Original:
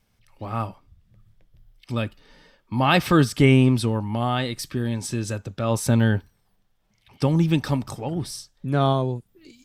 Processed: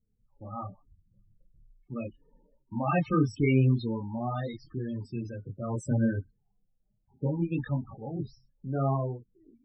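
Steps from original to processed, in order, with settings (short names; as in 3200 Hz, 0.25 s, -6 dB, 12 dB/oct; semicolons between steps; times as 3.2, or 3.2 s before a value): low-pass opened by the level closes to 710 Hz, open at -19 dBFS; chorus voices 6, 0.7 Hz, delay 26 ms, depth 4.9 ms; loudest bins only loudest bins 16; gain -5 dB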